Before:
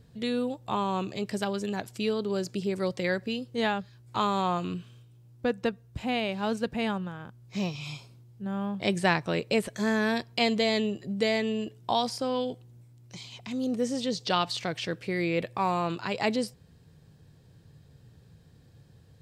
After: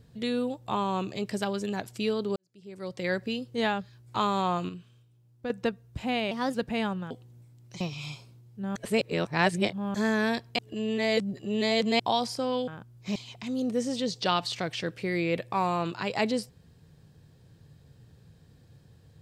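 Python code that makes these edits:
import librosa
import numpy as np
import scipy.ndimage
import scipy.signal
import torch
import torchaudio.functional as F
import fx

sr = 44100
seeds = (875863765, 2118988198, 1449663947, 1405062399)

y = fx.edit(x, sr, fx.fade_in_span(start_s=2.36, length_s=0.78, curve='qua'),
    fx.clip_gain(start_s=4.69, length_s=0.81, db=-7.0),
    fx.speed_span(start_s=6.31, length_s=0.28, speed=1.19),
    fx.swap(start_s=7.15, length_s=0.48, other_s=12.5, other_length_s=0.7),
    fx.reverse_span(start_s=8.58, length_s=1.19),
    fx.reverse_span(start_s=10.41, length_s=1.41), tone=tone)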